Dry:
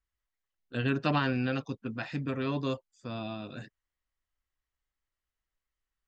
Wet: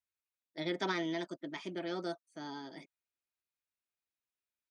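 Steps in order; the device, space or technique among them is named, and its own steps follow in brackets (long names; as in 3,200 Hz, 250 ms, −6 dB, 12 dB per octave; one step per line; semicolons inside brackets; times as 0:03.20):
high-pass filter 140 Hz 12 dB per octave
nightcore (speed change +29%)
comb filter 3.2 ms, depth 30%
level −6.5 dB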